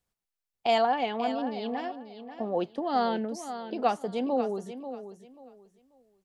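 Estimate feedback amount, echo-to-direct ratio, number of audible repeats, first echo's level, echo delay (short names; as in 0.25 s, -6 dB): 24%, -10.5 dB, 2, -11.0 dB, 0.538 s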